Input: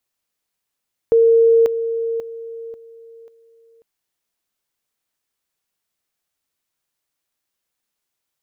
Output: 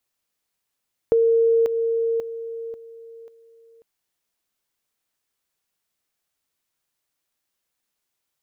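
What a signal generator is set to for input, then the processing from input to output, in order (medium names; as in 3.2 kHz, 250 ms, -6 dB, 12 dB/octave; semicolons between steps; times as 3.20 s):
level ladder 458 Hz -9 dBFS, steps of -10 dB, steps 5, 0.54 s 0.00 s
compression, threshold -16 dBFS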